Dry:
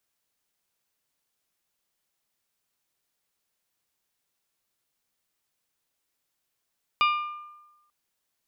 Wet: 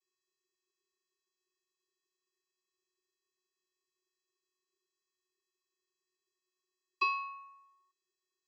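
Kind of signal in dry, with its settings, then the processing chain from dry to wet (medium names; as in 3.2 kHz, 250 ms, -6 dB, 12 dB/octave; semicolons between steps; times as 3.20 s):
glass hit bell, lowest mode 1.2 kHz, decay 1.09 s, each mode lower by 4.5 dB, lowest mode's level -18 dB
treble shelf 2.7 kHz +11.5 dB; vocoder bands 32, square 368 Hz; feedback comb 400 Hz, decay 0.28 s, mix 70%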